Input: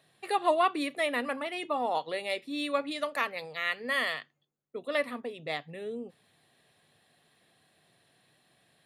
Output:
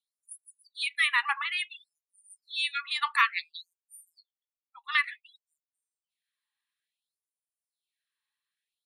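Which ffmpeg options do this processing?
-af "afftdn=nr=28:nf=-47,afftfilt=real='re*gte(b*sr/1024,800*pow(7000/800,0.5+0.5*sin(2*PI*0.57*pts/sr)))':imag='im*gte(b*sr/1024,800*pow(7000/800,0.5+0.5*sin(2*PI*0.57*pts/sr)))':win_size=1024:overlap=0.75,volume=2.51"

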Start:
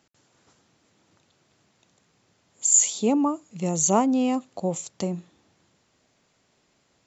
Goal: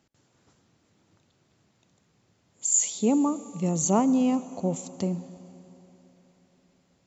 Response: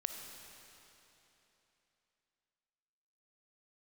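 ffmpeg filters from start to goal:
-filter_complex "[0:a]lowshelf=f=320:g=8,asplit=2[s0][s1];[1:a]atrim=start_sample=2205,asetrate=38367,aresample=44100[s2];[s1][s2]afir=irnorm=-1:irlink=0,volume=0.376[s3];[s0][s3]amix=inputs=2:normalize=0,volume=0.422"

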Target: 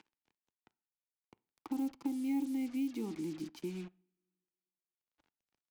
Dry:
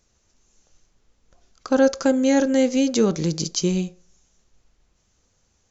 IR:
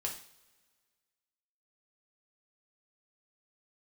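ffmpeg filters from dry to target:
-filter_complex "[0:a]lowpass=4900,acompressor=mode=upward:threshold=0.0708:ratio=2.5,asplit=3[s0][s1][s2];[s0]bandpass=f=300:t=q:w=8,volume=1[s3];[s1]bandpass=f=870:t=q:w=8,volume=0.501[s4];[s2]bandpass=f=2240:t=q:w=8,volume=0.355[s5];[s3][s4][s5]amix=inputs=3:normalize=0,acrusher=bits=7:mix=0:aa=0.5,acrossover=split=150|3000[s6][s7][s8];[s7]acompressor=threshold=0.0112:ratio=2[s9];[s6][s9][s8]amix=inputs=3:normalize=0,asplit=2[s10][s11];[1:a]atrim=start_sample=2205,lowpass=2600,adelay=9[s12];[s11][s12]afir=irnorm=-1:irlink=0,volume=0.106[s13];[s10][s13]amix=inputs=2:normalize=0,volume=0.841"

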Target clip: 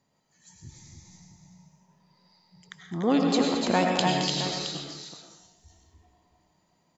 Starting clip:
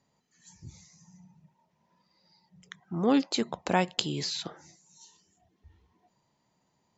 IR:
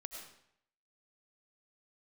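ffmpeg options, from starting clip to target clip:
-filter_complex "[0:a]aecho=1:1:218|289|301|668:0.299|0.447|0.531|0.282[s0];[1:a]atrim=start_sample=2205[s1];[s0][s1]afir=irnorm=-1:irlink=0,volume=1.88"

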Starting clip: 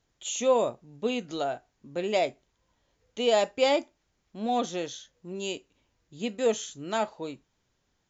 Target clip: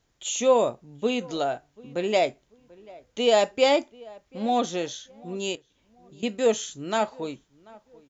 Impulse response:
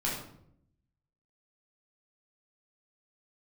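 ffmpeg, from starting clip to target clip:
-filter_complex "[0:a]asettb=1/sr,asplit=3[s0][s1][s2];[s0]atrim=end=5.554[s3];[s1]atrim=start=5.55:end=6.23,asetpts=PTS-STARTPTS,afade=t=in:d=0.004:c=qsin,afade=t=out:st=0.676:d=0.004:c=qsin,acompressor=threshold=0.00224:ratio=4[s4];[s2]atrim=start=6.226[s5];[s3][s4]acrossfade=d=0.004:c1=hsin:c2=qsin[s6];[s6][s5]acrossfade=d=0.004:c1=qsin:c2=hsin,asplit=2[s7][s8];[s8]adelay=738,lowpass=f=1700:p=1,volume=0.0708,asplit=2[s9][s10];[s10]adelay=738,lowpass=f=1700:p=1,volume=0.32[s11];[s9][s11]amix=inputs=2:normalize=0[s12];[s7][s12]amix=inputs=2:normalize=0,volume=1.5"

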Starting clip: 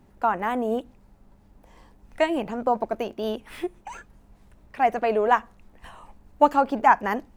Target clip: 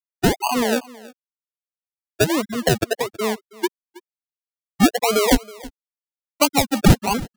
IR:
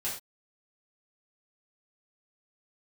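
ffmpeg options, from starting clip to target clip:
-filter_complex "[0:a]afftfilt=real='re*gte(hypot(re,im),0.224)':imag='im*gte(hypot(re,im),0.224)':win_size=1024:overlap=0.75,acrusher=samples=34:mix=1:aa=0.000001:lfo=1:lforange=20.4:lforate=1.5,acrossover=split=280|3000[s0][s1][s2];[s1]acompressor=threshold=0.0631:ratio=6[s3];[s0][s3][s2]amix=inputs=3:normalize=0,asplit=2[s4][s5];[s5]aecho=0:1:322:0.0891[s6];[s4][s6]amix=inputs=2:normalize=0,alimiter=level_in=2.37:limit=0.891:release=50:level=0:latency=1"

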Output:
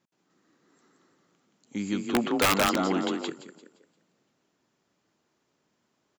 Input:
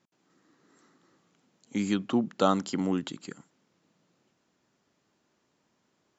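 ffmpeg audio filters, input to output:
-filter_complex "[0:a]asplit=2[s0][s1];[s1]asplit=5[s2][s3][s4][s5][s6];[s2]adelay=173,afreqshift=31,volume=0.668[s7];[s3]adelay=346,afreqshift=62,volume=0.248[s8];[s4]adelay=519,afreqshift=93,volume=0.0912[s9];[s5]adelay=692,afreqshift=124,volume=0.0339[s10];[s6]adelay=865,afreqshift=155,volume=0.0126[s11];[s7][s8][s9][s10][s11]amix=inputs=5:normalize=0[s12];[s0][s12]amix=inputs=2:normalize=0,asettb=1/sr,asplit=3[s13][s14][s15];[s13]atrim=end=2.144[s16];[s14]atrim=start=2.14:end=3.3,asetpts=PTS-STARTPTS,afade=t=in:d=0.004:c=qsin,afade=t=out:st=1.156:d=0.004:c=qsin,asplit=2[s17][s18];[s18]highpass=f=720:p=1,volume=7.08,asoftclip=type=tanh:threshold=0.422[s19];[s17][s19]amix=inputs=2:normalize=0,lowpass=f=2800:p=1,volume=0.501[s20];[s15]atrim=start=3.296[s21];[s16][s20]acrossfade=d=0.004:c1=hsin:c2=qsin[s22];[s22][s21]acrossfade=d=0.004:c1=qsin:c2=hsin,acontrast=45,aeval=exprs='(mod(2.37*val(0)+1,2)-1)/2.37':c=same,volume=0.376"

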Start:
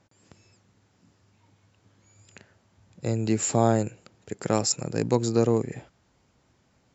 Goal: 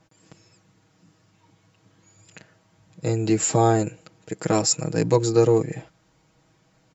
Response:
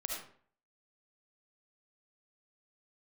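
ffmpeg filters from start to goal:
-af "aecho=1:1:6.3:0.88,volume=1.19"

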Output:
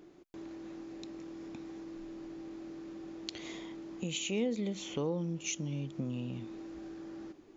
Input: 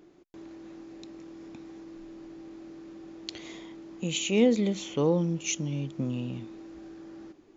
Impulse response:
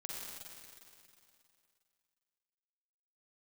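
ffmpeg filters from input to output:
-af "acompressor=threshold=0.0126:ratio=2"

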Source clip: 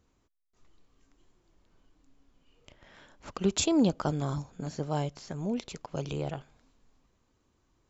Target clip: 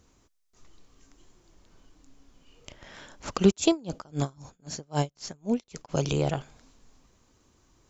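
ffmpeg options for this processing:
-filter_complex "[0:a]equalizer=f=6200:t=o:w=0.99:g=6.5,asplit=3[s0][s1][s2];[s0]afade=t=out:st=3.5:d=0.02[s3];[s1]aeval=exprs='val(0)*pow(10,-34*(0.5-0.5*cos(2*PI*3.8*n/s))/20)':c=same,afade=t=in:st=3.5:d=0.02,afade=t=out:st=5.88:d=0.02[s4];[s2]afade=t=in:st=5.88:d=0.02[s5];[s3][s4][s5]amix=inputs=3:normalize=0,volume=2.37"

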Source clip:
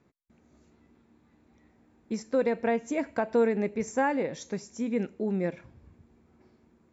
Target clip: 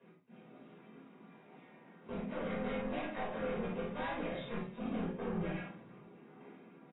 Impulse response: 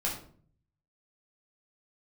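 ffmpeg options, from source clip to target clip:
-filter_complex "[0:a]highpass=f=180:w=0.5412,highpass=f=180:w=1.3066,aecho=1:1:4.9:0.71,bandreject=f=231.2:t=h:w=4,bandreject=f=462.4:t=h:w=4,bandreject=f=693.6:t=h:w=4,bandreject=f=924.8:t=h:w=4,bandreject=f=1156:t=h:w=4,acompressor=threshold=0.0224:ratio=12,asplit=2[s0][s1];[s1]asetrate=52444,aresample=44100,atempo=0.840896,volume=1[s2];[s0][s2]amix=inputs=2:normalize=0,afreqshift=-23,asoftclip=type=tanh:threshold=0.0106,aecho=1:1:37|53:0.355|0.355[s3];[1:a]atrim=start_sample=2205,afade=t=out:st=0.16:d=0.01,atrim=end_sample=7497[s4];[s3][s4]afir=irnorm=-1:irlink=0,volume=0.708" -ar 16000 -c:a aac -b:a 16k

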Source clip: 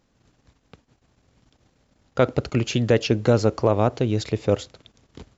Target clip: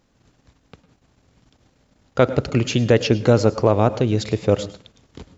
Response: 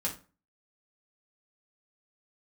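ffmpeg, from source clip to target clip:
-filter_complex "[0:a]asplit=2[s0][s1];[1:a]atrim=start_sample=2205,adelay=101[s2];[s1][s2]afir=irnorm=-1:irlink=0,volume=0.112[s3];[s0][s3]amix=inputs=2:normalize=0,volume=1.41"

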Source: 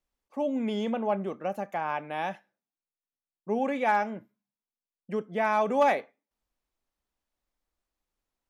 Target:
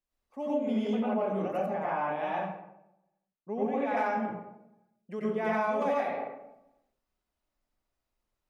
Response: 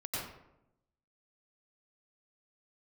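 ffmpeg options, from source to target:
-filter_complex "[1:a]atrim=start_sample=2205[s0];[0:a][s0]afir=irnorm=-1:irlink=0,acompressor=threshold=0.0631:ratio=6,asettb=1/sr,asplit=3[s1][s2][s3];[s1]atrim=end=1.664[s4];[s2]atrim=start=1.66:end=3.97,asetpts=PTS-STARTPTS,afade=t=in:d=0.004:c=qsin,afade=t=out:st=2.306:d=0.004:c=qsin,lowpass=f=2400:p=1[s5];[s3]atrim=start=3.966[s6];[s4][s5]acrossfade=d=0.004:c1=hsin:c2=qsin[s7];[s7][s6]acrossfade=d=0.004:c1=qsin:c2=hsin,volume=0.841"

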